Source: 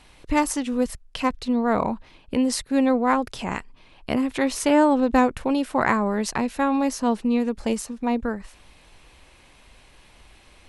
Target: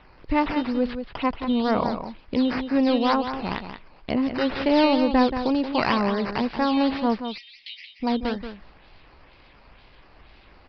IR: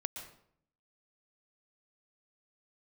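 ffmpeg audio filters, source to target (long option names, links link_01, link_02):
-filter_complex "[0:a]acrossover=split=2800[link_01][link_02];[link_02]volume=27dB,asoftclip=hard,volume=-27dB[link_03];[link_01][link_03]amix=inputs=2:normalize=0,acrusher=samples=9:mix=1:aa=0.000001:lfo=1:lforange=9:lforate=2.1,asoftclip=type=tanh:threshold=-9.5dB,asettb=1/sr,asplit=3[link_04][link_05][link_06];[link_04]atrim=end=7.204[link_07];[link_05]atrim=start=7.2:end=8,asetpts=PTS-STARTPTS,afade=type=in:duration=0.004:curve=qsin,afade=type=out:start_time=0.796:duration=0.004:curve=qsin,asuperpass=centerf=3800:order=20:qfactor=0.76[link_08];[link_06]atrim=start=7.996[link_09];[link_07][link_08]acrossfade=duration=0.004:curve1=hsin:curve2=qsin[link_10];[link_10][link_09]acrossfade=duration=0.004:curve1=qsin:curve2=hsin,asplit=2[link_11][link_12];[link_12]aecho=0:1:179:0.355[link_13];[link_11][link_13]amix=inputs=2:normalize=0,acrusher=bits=10:mix=0:aa=0.000001,aresample=11025,aresample=44100"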